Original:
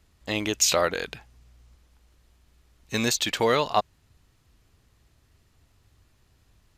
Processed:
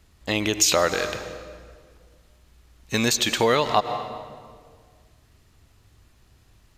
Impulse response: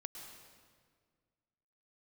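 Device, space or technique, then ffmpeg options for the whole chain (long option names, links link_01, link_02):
ducked reverb: -filter_complex "[0:a]asplit=3[link_01][link_02][link_03];[1:a]atrim=start_sample=2205[link_04];[link_02][link_04]afir=irnorm=-1:irlink=0[link_05];[link_03]apad=whole_len=298737[link_06];[link_05][link_06]sidechaincompress=threshold=-28dB:ratio=8:attack=30:release=116,volume=2.5dB[link_07];[link_01][link_07]amix=inputs=2:normalize=0"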